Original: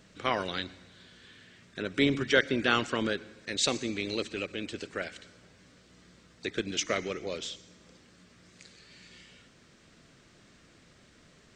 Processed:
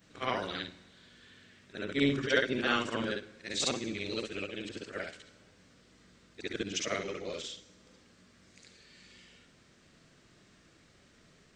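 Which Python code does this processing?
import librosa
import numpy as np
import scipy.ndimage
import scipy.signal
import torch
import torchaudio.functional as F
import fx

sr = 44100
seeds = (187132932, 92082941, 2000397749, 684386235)

y = fx.frame_reverse(x, sr, frame_ms=142.0)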